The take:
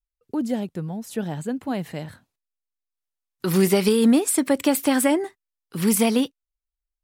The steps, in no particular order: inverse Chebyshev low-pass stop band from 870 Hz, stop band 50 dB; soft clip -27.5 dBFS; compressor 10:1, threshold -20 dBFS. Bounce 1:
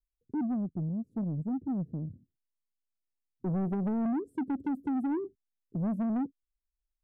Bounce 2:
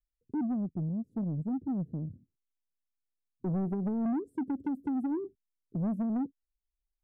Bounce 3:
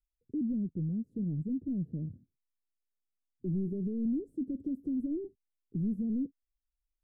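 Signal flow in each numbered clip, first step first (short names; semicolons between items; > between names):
inverse Chebyshev low-pass > compressor > soft clip; compressor > inverse Chebyshev low-pass > soft clip; compressor > soft clip > inverse Chebyshev low-pass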